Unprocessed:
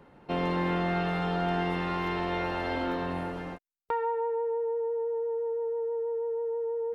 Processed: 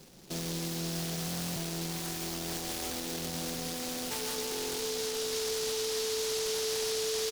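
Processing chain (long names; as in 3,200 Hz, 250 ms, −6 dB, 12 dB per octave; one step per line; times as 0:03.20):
speed change −5%
comb filter 5.4 ms, depth 37%
echo that builds up and dies away 148 ms, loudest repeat 5, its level −15 dB
brickwall limiter −28.5 dBFS, peak gain reduction 10.5 dB
buffer that repeats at 0:01.26/0:04.50, samples 1,024, times 12
short delay modulated by noise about 4,700 Hz, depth 0.27 ms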